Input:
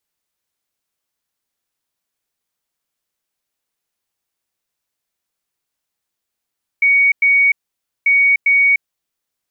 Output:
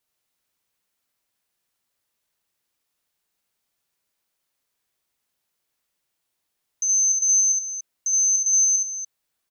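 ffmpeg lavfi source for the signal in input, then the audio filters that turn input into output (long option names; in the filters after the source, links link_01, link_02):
-f lavfi -i "aevalsrc='0.355*sin(2*PI*2240*t)*clip(min(mod(mod(t,1.24),0.4),0.3-mod(mod(t,1.24),0.4))/0.005,0,1)*lt(mod(t,1.24),0.8)':duration=2.48:sample_rate=44100"
-af "afftfilt=real='real(if(lt(b,736),b+184*(1-2*mod(floor(b/184),2)),b),0)':imag='imag(if(lt(b,736),b+184*(1-2*mod(floor(b/184),2)),b),0)':win_size=2048:overlap=0.75,alimiter=limit=-19.5dB:level=0:latency=1:release=31,aecho=1:1:69.97|288.6:0.631|0.398"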